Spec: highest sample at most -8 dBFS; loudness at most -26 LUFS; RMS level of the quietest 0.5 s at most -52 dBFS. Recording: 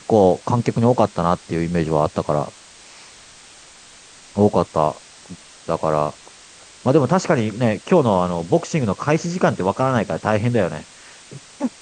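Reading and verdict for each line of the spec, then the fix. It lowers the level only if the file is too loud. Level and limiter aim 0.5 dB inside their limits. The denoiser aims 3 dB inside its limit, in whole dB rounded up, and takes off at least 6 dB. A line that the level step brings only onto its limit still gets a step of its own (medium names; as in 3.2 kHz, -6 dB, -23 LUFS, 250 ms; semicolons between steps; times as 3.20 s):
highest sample -2.5 dBFS: fail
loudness -19.5 LUFS: fail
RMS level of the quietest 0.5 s -45 dBFS: fail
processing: noise reduction 6 dB, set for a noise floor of -45 dBFS; trim -7 dB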